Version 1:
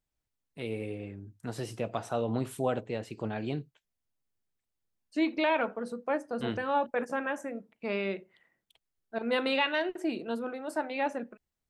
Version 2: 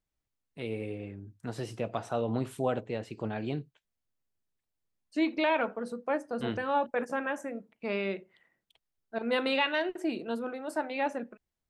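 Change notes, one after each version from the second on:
first voice: add high shelf 8700 Hz -8.5 dB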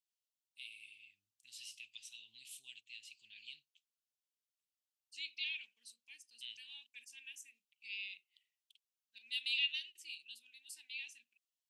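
master: add elliptic high-pass 2700 Hz, stop band 50 dB

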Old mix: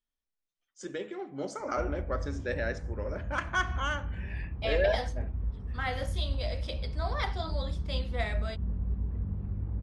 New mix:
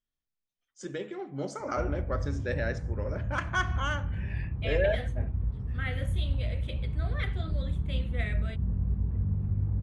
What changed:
second voice: add fixed phaser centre 2200 Hz, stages 4; master: add bell 120 Hz +10.5 dB 0.95 oct

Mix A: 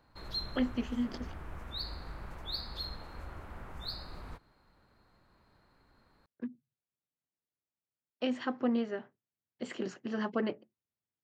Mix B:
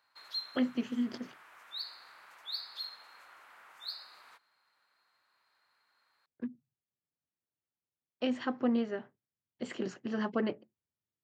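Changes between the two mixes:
background: add HPF 1300 Hz 12 dB/oct; master: add low shelf 130 Hz +4 dB

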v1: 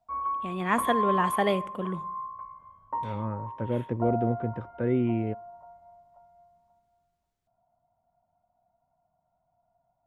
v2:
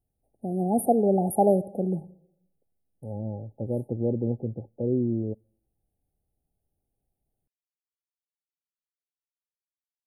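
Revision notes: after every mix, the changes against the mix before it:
first voice +5.5 dB; background: muted; master: add brick-wall FIR band-stop 860–8500 Hz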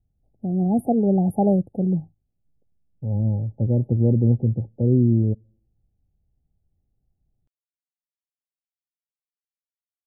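first voice: send off; master: add tone controls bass +14 dB, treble -13 dB

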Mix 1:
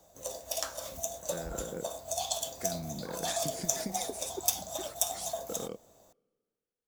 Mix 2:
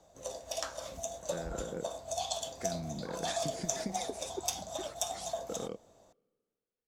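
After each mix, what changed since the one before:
master: add air absorption 61 m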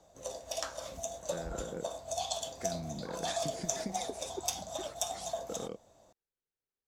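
reverb: off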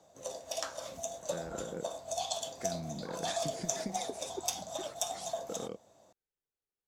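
background: add HPF 110 Hz 12 dB/oct

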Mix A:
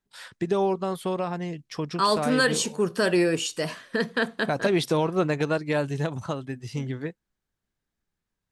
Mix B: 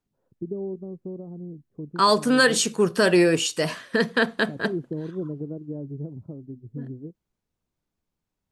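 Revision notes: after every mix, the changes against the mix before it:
first voice: add ladder low-pass 440 Hz, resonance 25%; second voice +4.0 dB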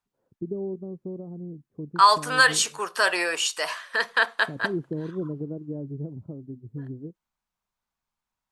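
second voice: add resonant high-pass 950 Hz, resonance Q 1.6

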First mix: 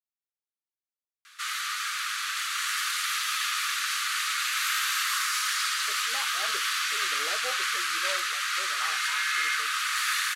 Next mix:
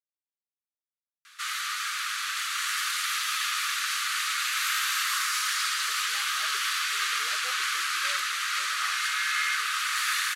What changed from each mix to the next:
speech -11.0 dB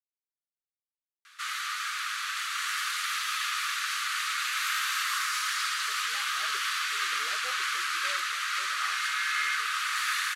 master: add tilt -1.5 dB/oct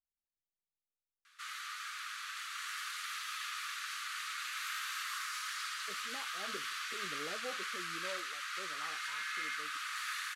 speech: remove HPF 590 Hz 12 dB/oct; background -10.5 dB

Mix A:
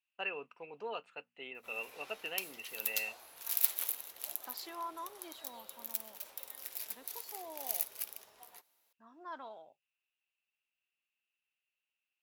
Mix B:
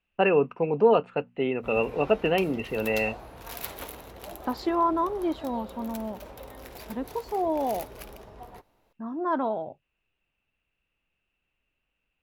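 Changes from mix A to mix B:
background -5.0 dB; master: remove differentiator

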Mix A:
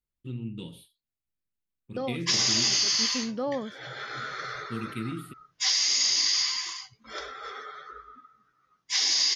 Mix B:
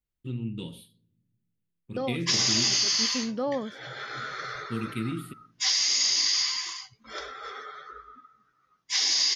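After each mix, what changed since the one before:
reverb: on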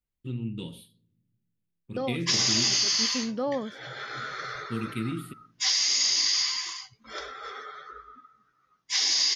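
none

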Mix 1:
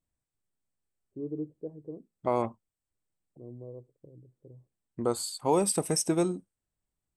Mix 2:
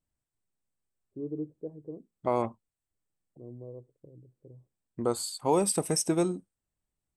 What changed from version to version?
none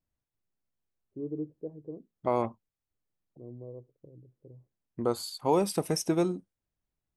master: add bell 8200 Hz -14 dB 0.27 oct

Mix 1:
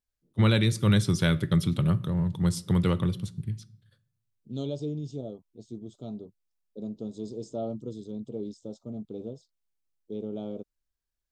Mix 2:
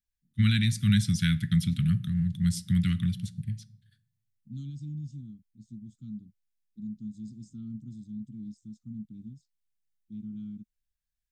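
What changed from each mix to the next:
second voice: add bell 3200 Hz -14.5 dB 2.3 oct; master: add elliptic band-stop 220–1700 Hz, stop band 60 dB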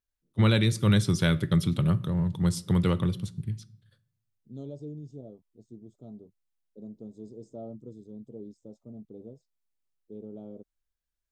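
second voice -6.5 dB; master: remove elliptic band-stop 220–1700 Hz, stop band 60 dB

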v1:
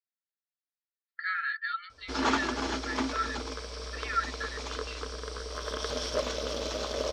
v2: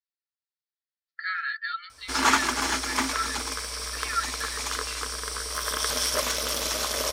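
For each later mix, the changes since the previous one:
background: add graphic EQ 500/1000/2000 Hz -4/+5/+8 dB; master: remove air absorption 180 m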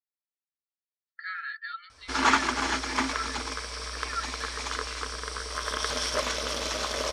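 speech -5.0 dB; master: add air absorption 82 m

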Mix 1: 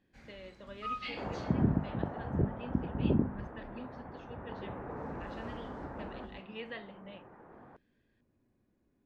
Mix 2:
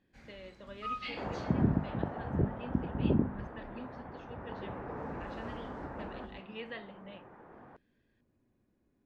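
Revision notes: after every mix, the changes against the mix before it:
second sound: remove air absorption 240 m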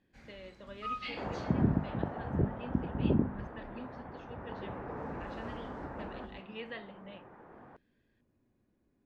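none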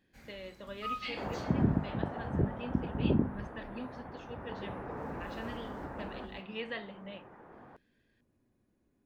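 speech +3.5 dB; master: remove air absorption 70 m

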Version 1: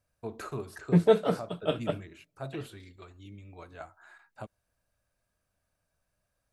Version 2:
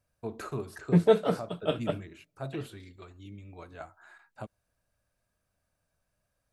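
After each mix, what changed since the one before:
first voice: add bell 200 Hz +2.5 dB 2.1 oct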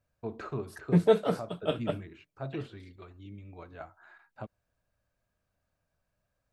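first voice: add air absorption 170 m; second voice: send -10.0 dB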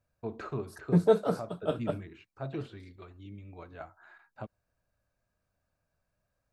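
second voice: add band shelf 2500 Hz -8.5 dB 1.1 oct; reverb: off

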